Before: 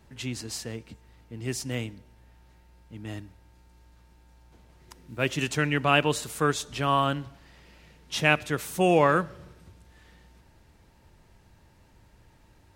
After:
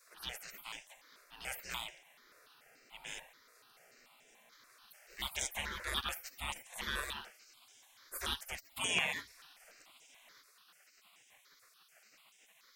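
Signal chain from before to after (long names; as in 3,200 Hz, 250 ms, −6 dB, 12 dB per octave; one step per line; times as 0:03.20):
0:08.71–0:09.32: high-pass filter 120 Hz → 290 Hz 12 dB per octave
gate on every frequency bin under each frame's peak −25 dB weak
step-sequenced phaser 6.9 Hz 830–4,300 Hz
level +9 dB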